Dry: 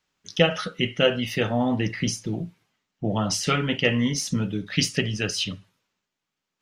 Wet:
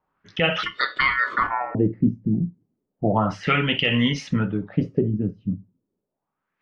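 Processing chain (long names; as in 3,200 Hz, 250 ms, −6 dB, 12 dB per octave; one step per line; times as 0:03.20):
0:00.63–0:01.75: ring modulation 1,600 Hz
auto-filter low-pass sine 0.32 Hz 220–3,200 Hz
boost into a limiter +10 dB
level −7.5 dB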